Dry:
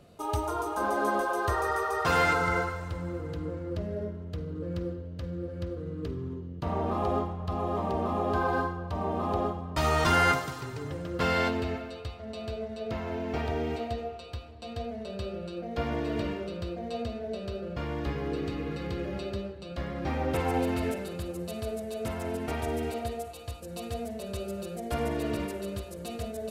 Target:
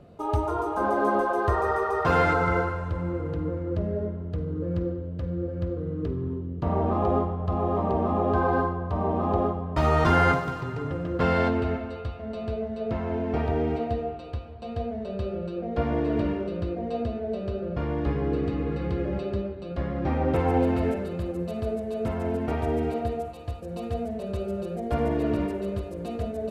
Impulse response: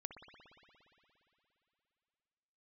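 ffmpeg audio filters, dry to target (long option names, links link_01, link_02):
-filter_complex "[0:a]lowpass=frequency=1000:poles=1,asplit=2[link_01][link_02];[1:a]atrim=start_sample=2205,highshelf=frequency=7300:gain=11[link_03];[link_02][link_03]afir=irnorm=-1:irlink=0,volume=-4.5dB[link_04];[link_01][link_04]amix=inputs=2:normalize=0,volume=3.5dB"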